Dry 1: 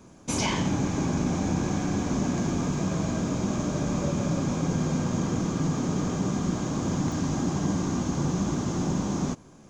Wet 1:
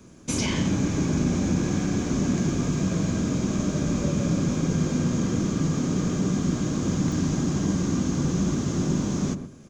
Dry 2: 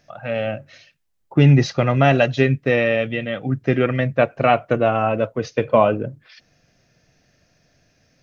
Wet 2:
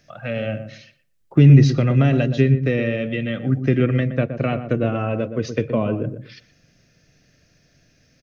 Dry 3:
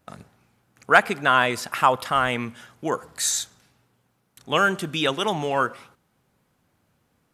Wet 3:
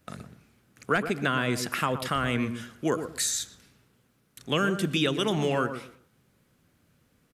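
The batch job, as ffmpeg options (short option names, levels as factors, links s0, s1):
-filter_complex "[0:a]equalizer=f=840:t=o:w=0.87:g=-9,acrossover=split=390[s0][s1];[s1]acompressor=threshold=0.0355:ratio=4[s2];[s0][s2]amix=inputs=2:normalize=0,asplit=2[s3][s4];[s4]adelay=120,lowpass=f=980:p=1,volume=0.398,asplit=2[s5][s6];[s6]adelay=120,lowpass=f=980:p=1,volume=0.23,asplit=2[s7][s8];[s8]adelay=120,lowpass=f=980:p=1,volume=0.23[s9];[s5][s7][s9]amix=inputs=3:normalize=0[s10];[s3][s10]amix=inputs=2:normalize=0,volume=1.33"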